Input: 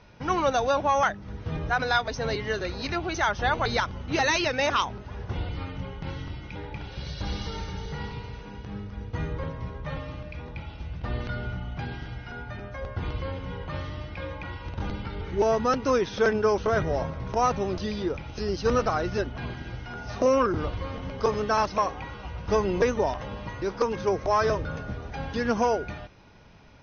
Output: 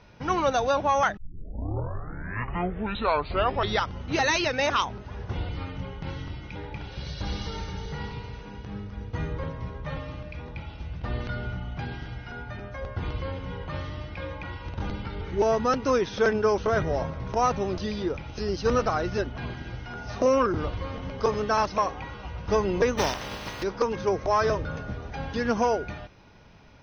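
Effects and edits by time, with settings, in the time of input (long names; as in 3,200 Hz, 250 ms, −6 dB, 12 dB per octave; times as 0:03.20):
0:01.17: tape start 2.83 s
0:22.97–0:23.62: compressing power law on the bin magnitudes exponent 0.45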